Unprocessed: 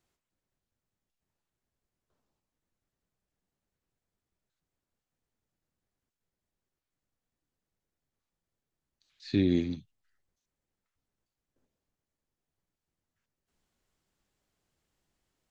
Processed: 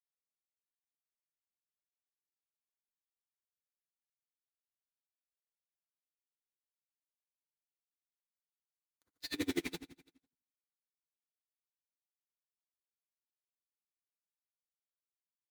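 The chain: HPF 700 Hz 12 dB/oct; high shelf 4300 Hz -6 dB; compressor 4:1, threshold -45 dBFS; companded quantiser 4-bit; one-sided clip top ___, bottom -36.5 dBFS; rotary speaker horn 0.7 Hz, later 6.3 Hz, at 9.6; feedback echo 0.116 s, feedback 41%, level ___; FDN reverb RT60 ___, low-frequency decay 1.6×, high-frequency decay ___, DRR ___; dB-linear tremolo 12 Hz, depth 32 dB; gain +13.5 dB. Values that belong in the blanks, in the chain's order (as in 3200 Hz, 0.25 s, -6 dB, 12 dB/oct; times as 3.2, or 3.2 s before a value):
-42.5 dBFS, -13.5 dB, 0.34 s, 0.55×, -2 dB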